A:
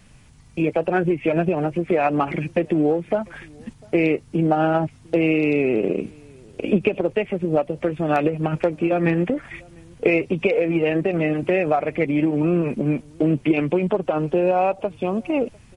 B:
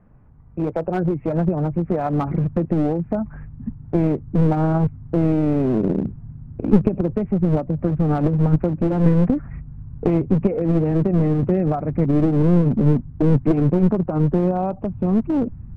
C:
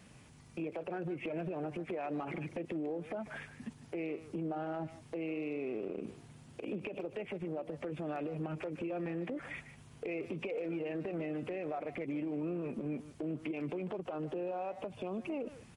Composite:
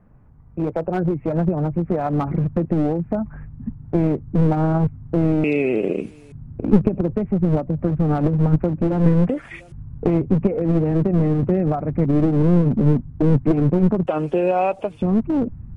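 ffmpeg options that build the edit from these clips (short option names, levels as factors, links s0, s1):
-filter_complex "[0:a]asplit=3[s0][s1][s2];[1:a]asplit=4[s3][s4][s5][s6];[s3]atrim=end=5.442[s7];[s0]atrim=start=5.438:end=6.322[s8];[s4]atrim=start=6.318:end=9.292[s9];[s1]atrim=start=9.288:end=9.722[s10];[s5]atrim=start=9.718:end=14.072[s11];[s2]atrim=start=14.068:end=15.022[s12];[s6]atrim=start=15.018[s13];[s7][s8]acrossfade=d=0.004:c1=hsin:c2=hsin[s14];[s14][s9]acrossfade=d=0.004:c1=hsin:c2=hsin[s15];[s15][s10]acrossfade=d=0.004:c1=hsin:c2=hsin[s16];[s16][s11]acrossfade=d=0.004:c1=hsin:c2=hsin[s17];[s17][s12]acrossfade=d=0.004:c1=hsin:c2=hsin[s18];[s18][s13]acrossfade=d=0.004:c1=hsin:c2=hsin"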